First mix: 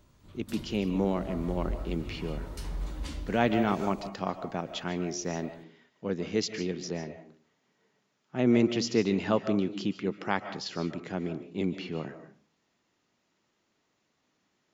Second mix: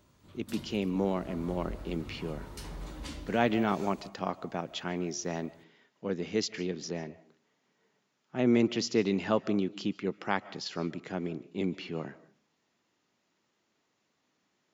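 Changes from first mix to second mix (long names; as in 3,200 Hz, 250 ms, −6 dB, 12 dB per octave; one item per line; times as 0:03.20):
speech: send −9.0 dB
master: add high-pass filter 110 Hz 6 dB per octave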